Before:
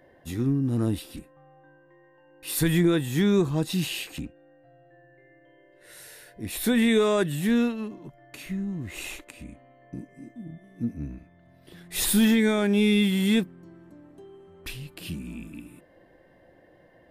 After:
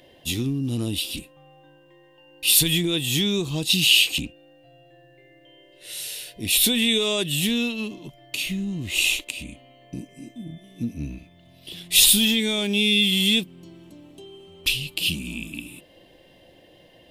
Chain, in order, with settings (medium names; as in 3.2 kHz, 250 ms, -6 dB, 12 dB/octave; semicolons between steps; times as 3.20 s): compression 3:1, threshold -27 dBFS, peak gain reduction 8 dB; resonant high shelf 2.2 kHz +10 dB, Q 3; trim +3.5 dB